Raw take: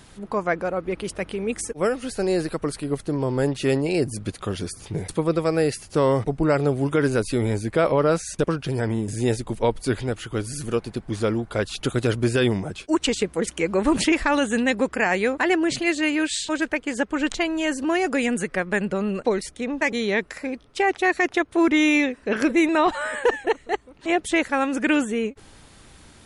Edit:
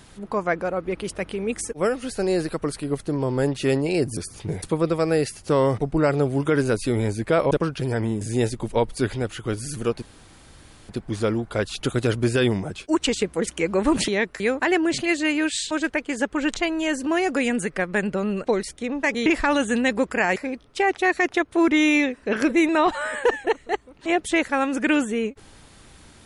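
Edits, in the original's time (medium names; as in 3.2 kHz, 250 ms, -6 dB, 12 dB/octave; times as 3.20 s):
4.17–4.63 s: delete
7.97–8.38 s: delete
10.89 s: insert room tone 0.87 s
14.08–15.18 s: swap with 20.04–20.36 s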